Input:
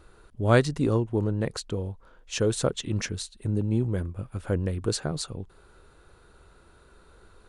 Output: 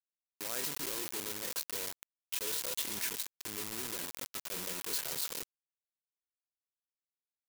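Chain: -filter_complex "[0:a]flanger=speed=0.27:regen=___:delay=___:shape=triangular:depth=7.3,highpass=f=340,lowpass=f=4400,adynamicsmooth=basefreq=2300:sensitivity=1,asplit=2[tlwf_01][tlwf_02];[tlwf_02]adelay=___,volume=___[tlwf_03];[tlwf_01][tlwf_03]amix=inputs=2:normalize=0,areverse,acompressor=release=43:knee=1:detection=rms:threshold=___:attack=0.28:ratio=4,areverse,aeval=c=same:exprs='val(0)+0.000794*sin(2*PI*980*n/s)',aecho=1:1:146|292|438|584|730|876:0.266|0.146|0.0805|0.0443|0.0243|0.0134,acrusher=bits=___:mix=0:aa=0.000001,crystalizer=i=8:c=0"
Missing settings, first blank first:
71, 2, 28, 0.251, 0.00562, 7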